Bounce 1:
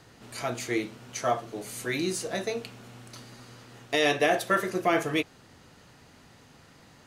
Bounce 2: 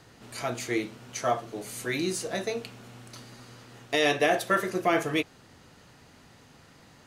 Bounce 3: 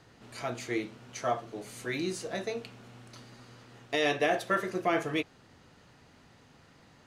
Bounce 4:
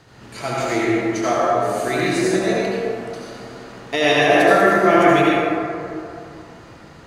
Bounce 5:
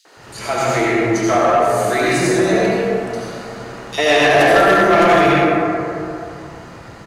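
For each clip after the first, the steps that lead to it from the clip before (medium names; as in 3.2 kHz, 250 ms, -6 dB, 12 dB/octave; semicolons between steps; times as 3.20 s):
no audible change
treble shelf 8.8 kHz -11 dB; trim -3.5 dB
reverberation RT60 2.7 s, pre-delay 63 ms, DRR -7 dB; trim +7.5 dB
three bands offset in time highs, mids, lows 50/170 ms, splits 290/3500 Hz; saturation -13 dBFS, distortion -13 dB; trim +6.5 dB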